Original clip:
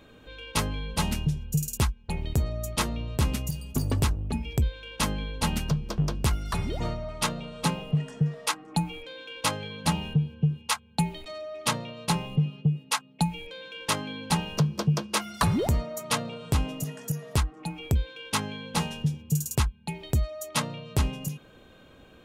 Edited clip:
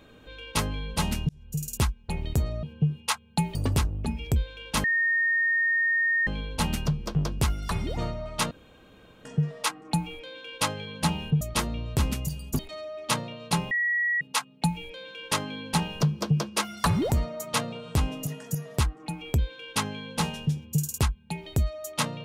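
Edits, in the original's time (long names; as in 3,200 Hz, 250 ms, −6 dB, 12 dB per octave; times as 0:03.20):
0:01.29–0:01.78: fade in
0:02.63–0:03.81: swap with 0:10.24–0:11.16
0:05.10: insert tone 1,840 Hz −21 dBFS 1.43 s
0:07.34–0:08.08: fill with room tone
0:12.28–0:12.78: beep over 1,920 Hz −22.5 dBFS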